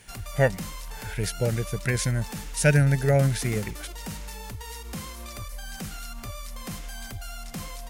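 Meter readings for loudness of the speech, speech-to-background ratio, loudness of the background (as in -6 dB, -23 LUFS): -25.0 LUFS, 13.0 dB, -38.0 LUFS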